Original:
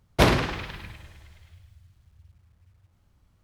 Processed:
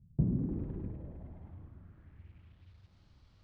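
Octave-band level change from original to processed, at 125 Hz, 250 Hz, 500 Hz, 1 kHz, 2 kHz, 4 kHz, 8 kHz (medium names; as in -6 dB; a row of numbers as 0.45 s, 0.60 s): -5.5 dB, -6.0 dB, -20.0 dB, -32.5 dB, -39.0 dB, under -40 dB, under -40 dB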